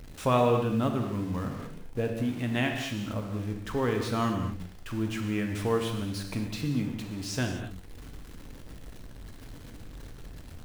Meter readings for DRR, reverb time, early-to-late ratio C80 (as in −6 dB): 2.5 dB, non-exponential decay, 6.0 dB